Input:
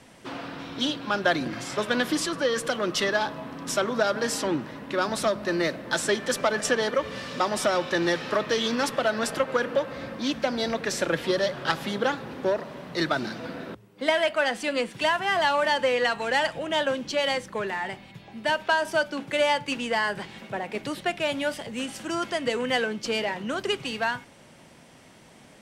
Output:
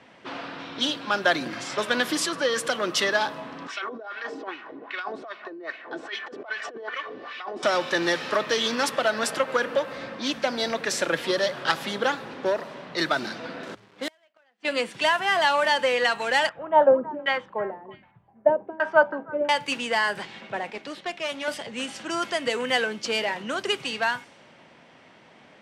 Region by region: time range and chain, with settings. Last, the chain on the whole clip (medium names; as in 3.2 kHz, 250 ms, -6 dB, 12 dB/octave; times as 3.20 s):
3.67–7.63 s: wah-wah 2.5 Hz 310–2600 Hz, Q 2.1 + compressor with a negative ratio -36 dBFS + comb 2.7 ms, depth 48%
13.63–14.65 s: companded quantiser 4-bit + inverted gate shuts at -21 dBFS, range -41 dB
16.49–19.49 s: LFO low-pass saw down 1.3 Hz 280–1700 Hz + repeats whose band climbs or falls 324 ms, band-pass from 1.2 kHz, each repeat 1.4 oct, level -9 dB + three bands expanded up and down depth 100%
20.70–21.48 s: high-pass 160 Hz + valve stage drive 24 dB, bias 0.75
whole clip: level-controlled noise filter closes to 2.9 kHz, open at -24 dBFS; high-pass 160 Hz 6 dB/octave; bass shelf 480 Hz -5.5 dB; trim +3 dB